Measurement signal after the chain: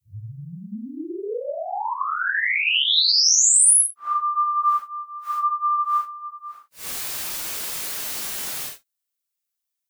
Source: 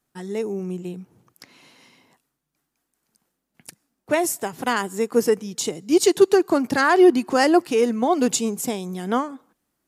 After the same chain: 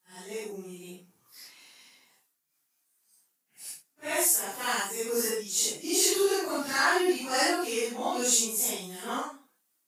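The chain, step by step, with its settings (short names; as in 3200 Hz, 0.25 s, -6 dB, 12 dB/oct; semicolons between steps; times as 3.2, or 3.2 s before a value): phase scrambler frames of 0.2 s; tilt +3.5 dB/oct; gain -7 dB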